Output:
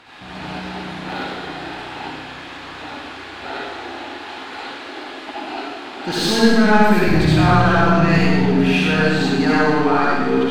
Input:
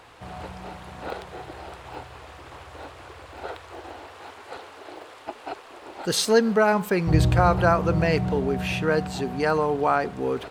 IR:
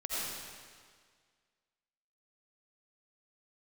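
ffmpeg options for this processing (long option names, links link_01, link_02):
-filter_complex "[0:a]equalizer=frequency=250:width_type=o:width=1:gain=8,equalizer=frequency=500:width_type=o:width=1:gain=-12,equalizer=frequency=1000:width_type=o:width=1:gain=-7,equalizer=frequency=4000:width_type=o:width=1:gain=6,asplit=2[link_01][link_02];[link_02]highpass=frequency=720:poles=1,volume=21dB,asoftclip=type=tanh:threshold=-6dB[link_03];[link_01][link_03]amix=inputs=2:normalize=0,lowpass=frequency=1100:poles=1,volume=-6dB[link_04];[1:a]atrim=start_sample=2205,asetrate=57330,aresample=44100[link_05];[link_04][link_05]afir=irnorm=-1:irlink=0,volume=2.5dB"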